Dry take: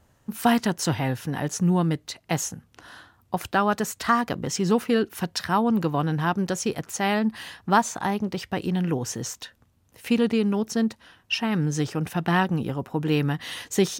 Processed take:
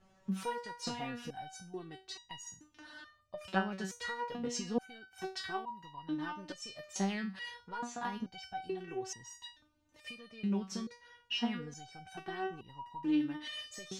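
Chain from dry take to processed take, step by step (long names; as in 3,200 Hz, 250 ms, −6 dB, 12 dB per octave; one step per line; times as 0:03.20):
low-pass filter 5,800 Hz 12 dB per octave
downward compressor, threshold −28 dBFS, peak gain reduction 14 dB
step-sequenced resonator 2.3 Hz 190–960 Hz
level +9 dB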